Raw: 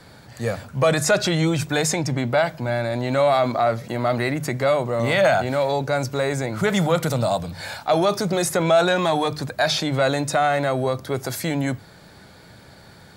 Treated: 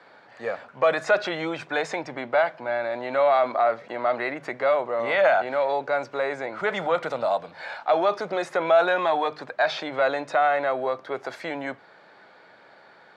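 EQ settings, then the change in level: band-pass 510–2300 Hz; 0.0 dB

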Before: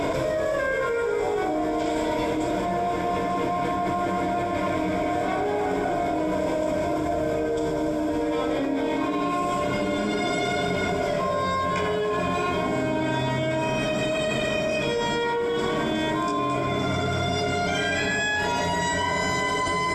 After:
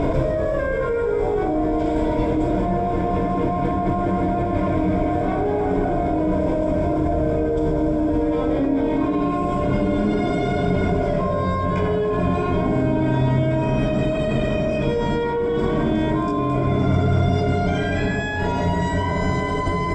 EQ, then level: tilt EQ -3.5 dB/octave; 0.0 dB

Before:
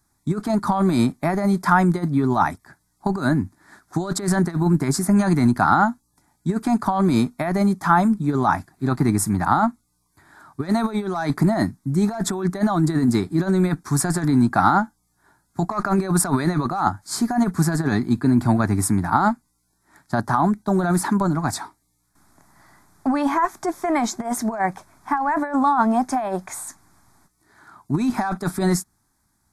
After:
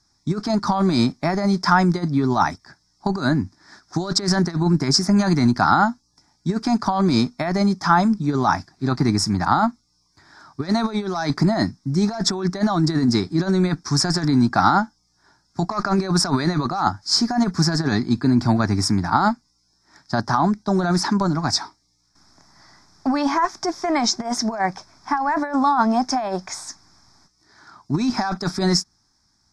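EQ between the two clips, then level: resonant low-pass 5.3 kHz, resonance Q 7.6; 0.0 dB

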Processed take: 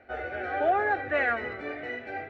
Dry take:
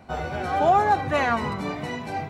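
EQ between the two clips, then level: resonant low-pass 1.7 kHz, resonance Q 2.4; bass shelf 290 Hz -10.5 dB; static phaser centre 420 Hz, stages 4; 0.0 dB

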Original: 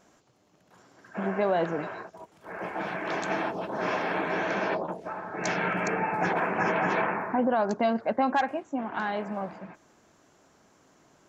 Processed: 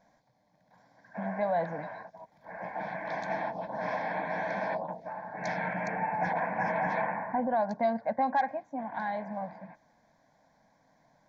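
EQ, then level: peaking EQ 82 Hz -10.5 dB 0.78 oct; treble shelf 2.8 kHz -10.5 dB; static phaser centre 1.9 kHz, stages 8; 0.0 dB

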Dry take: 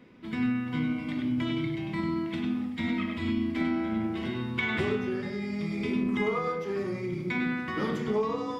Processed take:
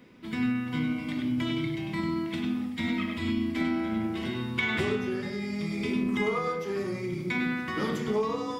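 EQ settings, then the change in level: treble shelf 5.1 kHz +10 dB; 0.0 dB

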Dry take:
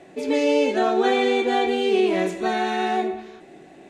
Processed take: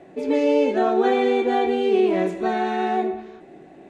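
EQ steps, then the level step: treble shelf 2.3 kHz -11.5 dB; +1.5 dB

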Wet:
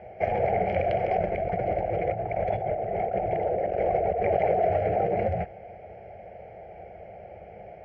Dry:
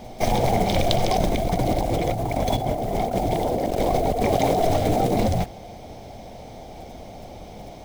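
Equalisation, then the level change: distance through air 79 m; cabinet simulation 100–2800 Hz, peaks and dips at 130 Hz -9 dB, 250 Hz -4 dB, 1.2 kHz -7 dB; static phaser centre 1 kHz, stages 6; 0.0 dB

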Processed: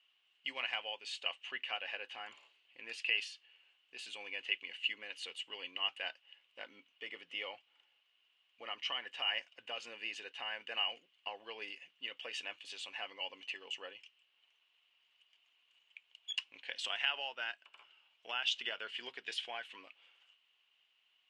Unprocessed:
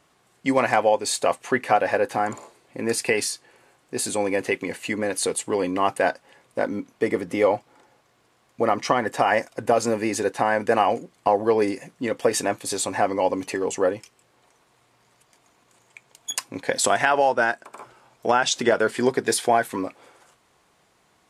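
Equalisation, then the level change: band-pass filter 2.9 kHz, Q 12; distance through air 54 m; +6.0 dB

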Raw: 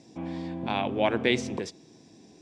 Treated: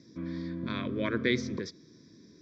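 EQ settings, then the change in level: Butterworth band-stop 850 Hz, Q 4.9; low-pass 6.1 kHz 24 dB/octave; static phaser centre 2.8 kHz, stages 6; 0.0 dB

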